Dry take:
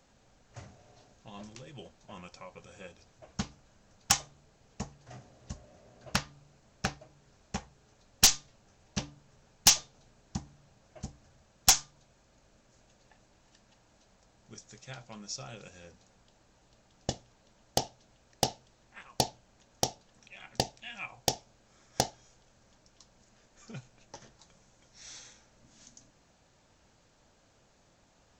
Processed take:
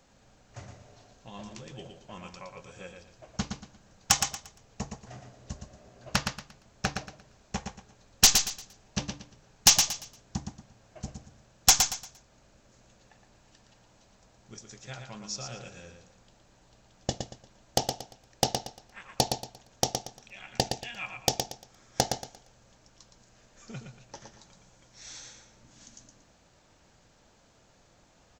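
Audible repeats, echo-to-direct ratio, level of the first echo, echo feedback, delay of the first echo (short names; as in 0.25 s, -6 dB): 3, -5.5 dB, -6.0 dB, 28%, 0.116 s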